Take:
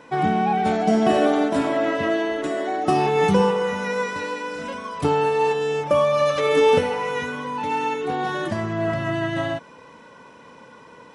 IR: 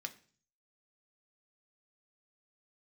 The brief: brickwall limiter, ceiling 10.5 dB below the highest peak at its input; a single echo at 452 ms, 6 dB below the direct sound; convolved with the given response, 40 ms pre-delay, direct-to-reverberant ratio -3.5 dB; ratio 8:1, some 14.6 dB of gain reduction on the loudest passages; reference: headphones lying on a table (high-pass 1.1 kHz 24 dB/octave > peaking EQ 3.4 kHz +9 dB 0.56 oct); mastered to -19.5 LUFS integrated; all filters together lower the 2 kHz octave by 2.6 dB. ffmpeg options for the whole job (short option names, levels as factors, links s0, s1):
-filter_complex "[0:a]equalizer=f=2000:t=o:g=-5,acompressor=threshold=0.0355:ratio=8,alimiter=level_in=1.41:limit=0.0631:level=0:latency=1,volume=0.708,aecho=1:1:452:0.501,asplit=2[s0][s1];[1:a]atrim=start_sample=2205,adelay=40[s2];[s1][s2]afir=irnorm=-1:irlink=0,volume=1.78[s3];[s0][s3]amix=inputs=2:normalize=0,highpass=f=1100:w=0.5412,highpass=f=1100:w=1.3066,equalizer=f=3400:t=o:w=0.56:g=9,volume=5.96"